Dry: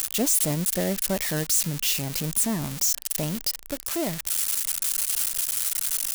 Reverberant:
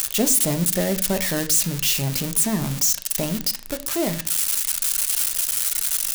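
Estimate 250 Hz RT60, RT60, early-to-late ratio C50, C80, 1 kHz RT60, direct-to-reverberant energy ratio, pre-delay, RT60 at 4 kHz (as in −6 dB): 0.60 s, 0.40 s, 16.0 dB, 20.5 dB, 0.35 s, 8.0 dB, 5 ms, 0.35 s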